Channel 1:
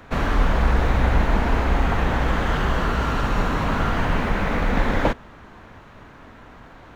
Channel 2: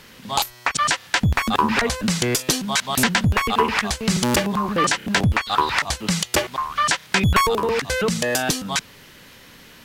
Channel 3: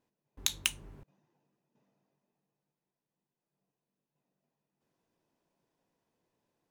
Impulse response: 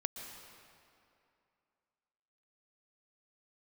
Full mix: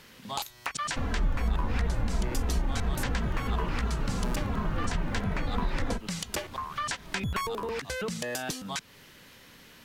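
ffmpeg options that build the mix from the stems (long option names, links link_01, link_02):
-filter_complex "[0:a]lowshelf=frequency=380:gain=9,asplit=2[link_01][link_02];[link_02]adelay=2.7,afreqshift=-2.9[link_03];[link_01][link_03]amix=inputs=2:normalize=1,adelay=850,volume=-2.5dB[link_04];[1:a]volume=-7dB[link_05];[2:a]volume=-14dB[link_06];[link_04][link_05][link_06]amix=inputs=3:normalize=0,acompressor=threshold=-34dB:ratio=2"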